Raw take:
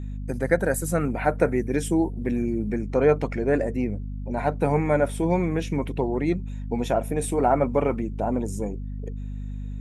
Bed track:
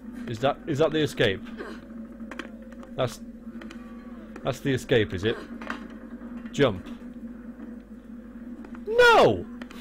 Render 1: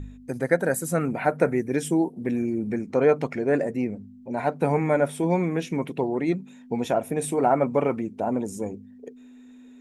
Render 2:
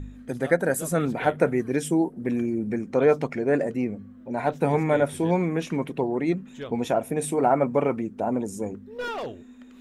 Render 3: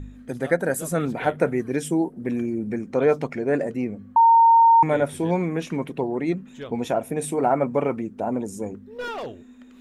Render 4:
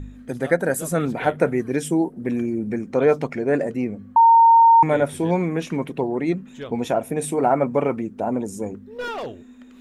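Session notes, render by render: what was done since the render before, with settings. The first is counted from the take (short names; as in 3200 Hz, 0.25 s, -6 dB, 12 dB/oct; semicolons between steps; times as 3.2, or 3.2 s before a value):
de-hum 50 Hz, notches 4
add bed track -15.5 dB
4.16–4.83 bleep 918 Hz -10.5 dBFS
gain +2 dB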